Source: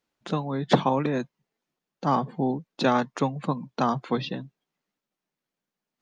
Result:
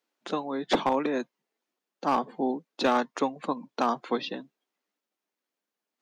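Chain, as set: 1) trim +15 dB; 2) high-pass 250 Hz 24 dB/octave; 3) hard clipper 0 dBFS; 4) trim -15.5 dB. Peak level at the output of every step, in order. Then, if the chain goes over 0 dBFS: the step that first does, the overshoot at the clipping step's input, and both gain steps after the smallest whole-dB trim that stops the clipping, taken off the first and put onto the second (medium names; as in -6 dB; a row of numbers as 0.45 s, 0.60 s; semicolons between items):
+10.0 dBFS, +9.5 dBFS, 0.0 dBFS, -15.5 dBFS; step 1, 9.5 dB; step 1 +5 dB, step 4 -5.5 dB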